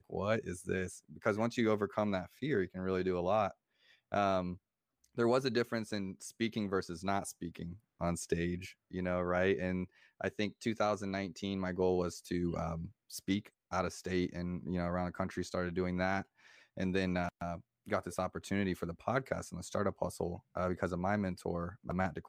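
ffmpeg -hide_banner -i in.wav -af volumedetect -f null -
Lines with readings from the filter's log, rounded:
mean_volume: -36.2 dB
max_volume: -18.1 dB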